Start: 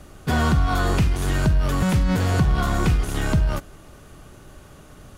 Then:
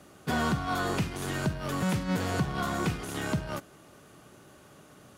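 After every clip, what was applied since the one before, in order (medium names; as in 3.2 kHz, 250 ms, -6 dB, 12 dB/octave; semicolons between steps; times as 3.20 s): high-pass 150 Hz 12 dB/octave; trim -5.5 dB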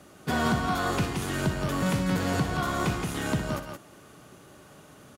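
loudspeakers at several distances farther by 21 m -10 dB, 59 m -6 dB; trim +1.5 dB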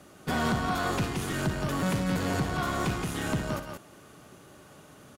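valve stage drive 21 dB, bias 0.45; crackling interface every 0.49 s, samples 512, repeat, from 0.32 s; trim +1 dB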